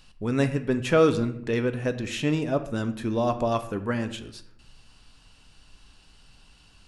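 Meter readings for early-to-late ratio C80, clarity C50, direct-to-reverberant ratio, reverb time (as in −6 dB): 15.0 dB, 12.5 dB, 8.5 dB, 0.70 s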